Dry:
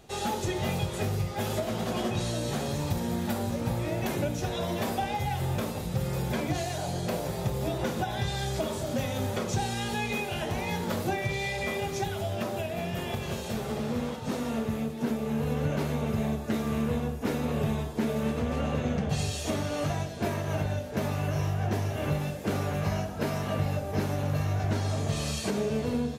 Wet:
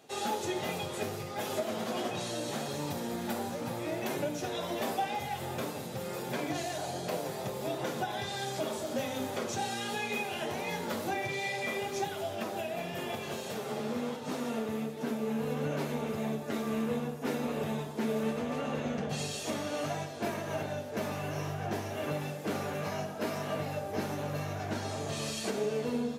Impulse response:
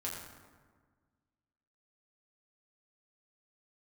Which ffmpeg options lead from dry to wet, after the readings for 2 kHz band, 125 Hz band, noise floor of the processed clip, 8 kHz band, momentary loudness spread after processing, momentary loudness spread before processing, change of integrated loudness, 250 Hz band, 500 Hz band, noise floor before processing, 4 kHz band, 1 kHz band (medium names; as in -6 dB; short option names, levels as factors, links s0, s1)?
-2.0 dB, -11.0 dB, -40 dBFS, -2.5 dB, 3 LU, 3 LU, -4.5 dB, -5.0 dB, -2.0 dB, -36 dBFS, -2.5 dB, -2.0 dB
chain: -filter_complex "[0:a]highpass=230,flanger=delay=6.4:depth=3.4:regen=-45:speed=1.4:shape=triangular,asplit=2[s0][s1];[1:a]atrim=start_sample=2205[s2];[s1][s2]afir=irnorm=-1:irlink=0,volume=0.316[s3];[s0][s3]amix=inputs=2:normalize=0"